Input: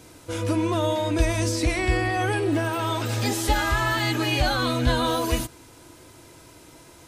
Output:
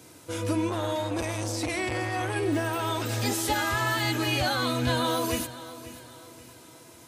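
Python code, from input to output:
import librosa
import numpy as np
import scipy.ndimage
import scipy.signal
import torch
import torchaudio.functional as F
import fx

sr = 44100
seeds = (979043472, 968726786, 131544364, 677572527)

y = scipy.signal.sosfilt(scipy.signal.butter(4, 89.0, 'highpass', fs=sr, output='sos'), x)
y = fx.high_shelf(y, sr, hz=8000.0, db=5.0)
y = fx.echo_feedback(y, sr, ms=538, feedback_pct=42, wet_db=-16.0)
y = fx.transformer_sat(y, sr, knee_hz=690.0, at=(0.69, 2.36))
y = y * librosa.db_to_amplitude(-3.0)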